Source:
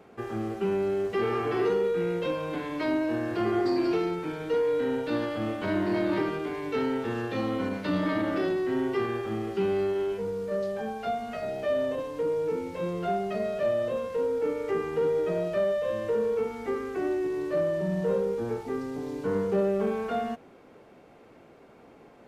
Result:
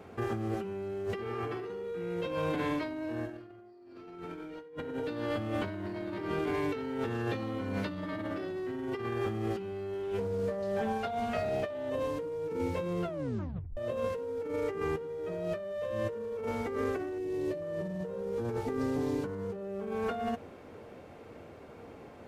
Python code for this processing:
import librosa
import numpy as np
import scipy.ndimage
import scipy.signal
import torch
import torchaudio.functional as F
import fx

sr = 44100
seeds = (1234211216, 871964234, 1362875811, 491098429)

y = fx.reverb_throw(x, sr, start_s=3.21, length_s=1.4, rt60_s=1.2, drr_db=-11.0)
y = fx.doppler_dist(y, sr, depth_ms=0.13, at=(10.03, 11.9))
y = fx.echo_throw(y, sr, start_s=15.73, length_s=0.65, ms=510, feedback_pct=80, wet_db=-15.5)
y = fx.peak_eq(y, sr, hz=1300.0, db=-12.0, octaves=0.77, at=(17.18, 17.62))
y = fx.edit(y, sr, fx.tape_stop(start_s=13.04, length_s=0.73), tone=tone)
y = fx.peak_eq(y, sr, hz=87.0, db=12.5, octaves=0.62)
y = fx.over_compress(y, sr, threshold_db=-33.0, ratio=-1.0)
y = y * librosa.db_to_amplitude(-4.5)